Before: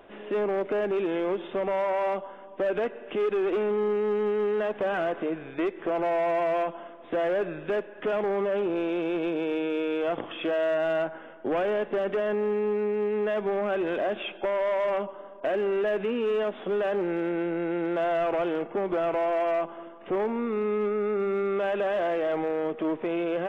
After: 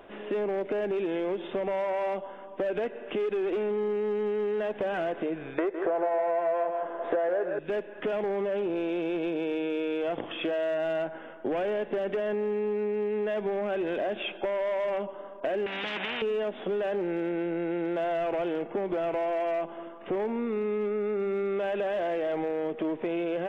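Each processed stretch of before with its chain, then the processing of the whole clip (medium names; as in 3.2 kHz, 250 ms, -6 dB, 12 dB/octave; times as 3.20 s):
5.58–7.59 s: high-order bell 820 Hz +13 dB 2.6 oct + delay 158 ms -9.5 dB
15.66–16.22 s: band-pass 200–2100 Hz + spectrum-flattening compressor 10:1
whole clip: dynamic bell 1.2 kHz, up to -6 dB, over -47 dBFS, Q 2.5; compression, threshold -28 dBFS; trim +1.5 dB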